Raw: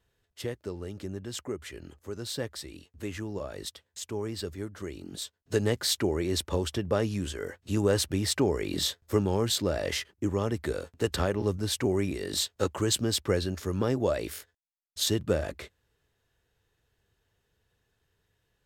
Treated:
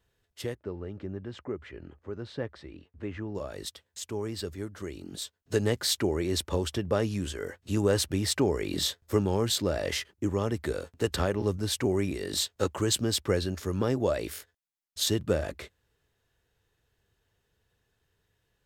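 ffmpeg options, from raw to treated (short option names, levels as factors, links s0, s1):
-filter_complex "[0:a]asettb=1/sr,asplit=3[s0][s1][s2];[s0]atrim=end=0.554[s3];[s1]atrim=start=0.55:end=3.35,asetpts=PTS-STARTPTS,afade=t=in:d=0.004:c=qsin,afade=t=out:st=2.796:d=0.004:c=qsin,lowpass=2100[s4];[s2]atrim=start=3.346[s5];[s3][s4]acrossfade=d=0.004:c1=hsin:c2=qsin[s6];[s6][s5]acrossfade=d=0.004:c1=qsin:c2=hsin"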